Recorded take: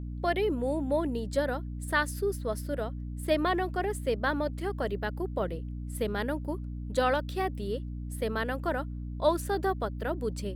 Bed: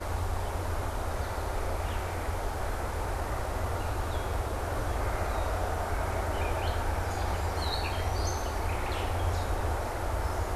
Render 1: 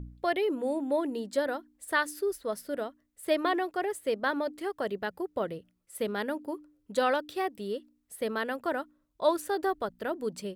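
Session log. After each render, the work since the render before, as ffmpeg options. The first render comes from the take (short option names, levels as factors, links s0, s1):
-af "bandreject=f=60:t=h:w=4,bandreject=f=120:t=h:w=4,bandreject=f=180:t=h:w=4,bandreject=f=240:t=h:w=4,bandreject=f=300:t=h:w=4"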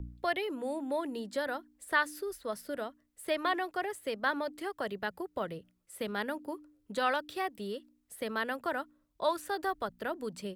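-filter_complex "[0:a]acrossover=split=210|690|3600[s0][s1][s2][s3];[s1]acompressor=threshold=0.01:ratio=6[s4];[s3]alimiter=level_in=5.01:limit=0.0631:level=0:latency=1:release=48,volume=0.2[s5];[s0][s4][s2][s5]amix=inputs=4:normalize=0"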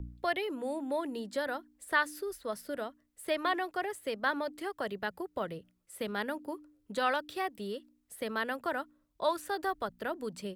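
-af anull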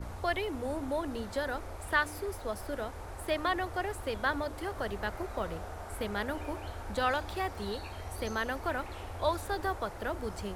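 -filter_complex "[1:a]volume=0.282[s0];[0:a][s0]amix=inputs=2:normalize=0"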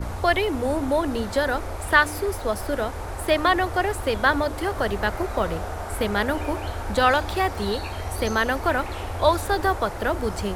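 -af "volume=3.55"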